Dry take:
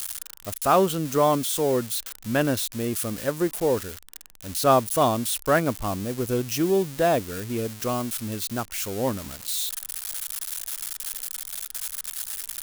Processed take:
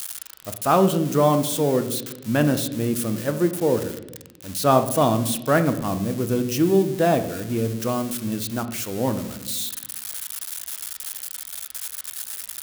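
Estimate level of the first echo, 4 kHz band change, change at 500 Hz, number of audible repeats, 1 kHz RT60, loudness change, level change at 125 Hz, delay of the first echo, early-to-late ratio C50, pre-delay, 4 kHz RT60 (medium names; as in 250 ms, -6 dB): no echo, 0.0 dB, +2.0 dB, no echo, 0.75 s, +2.5 dB, +5.5 dB, no echo, 11.5 dB, 3 ms, 0.80 s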